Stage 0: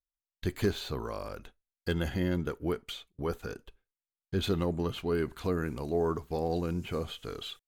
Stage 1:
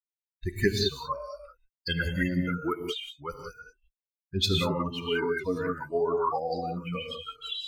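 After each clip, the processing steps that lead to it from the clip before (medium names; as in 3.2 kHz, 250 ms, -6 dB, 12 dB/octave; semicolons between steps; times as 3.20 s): expander on every frequency bin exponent 3; gated-style reverb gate 210 ms rising, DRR 1.5 dB; sweeping bell 1.9 Hz 870–5200 Hz +16 dB; trim +6 dB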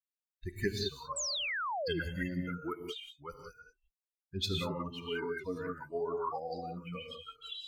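painted sound fall, 1.16–2.00 s, 300–8200 Hz -27 dBFS; trim -8.5 dB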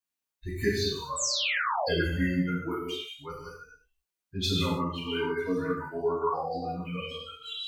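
gated-style reverb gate 180 ms falling, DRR -6 dB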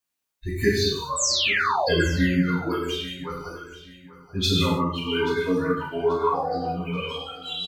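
feedback delay 834 ms, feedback 31%, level -17 dB; trim +6 dB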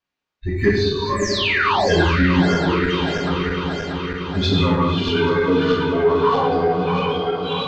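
backward echo that repeats 318 ms, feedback 80%, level -7 dB; in parallel at -3.5 dB: saturation -22.5 dBFS, distortion -10 dB; on the sum: distance through air 200 m; trim +2.5 dB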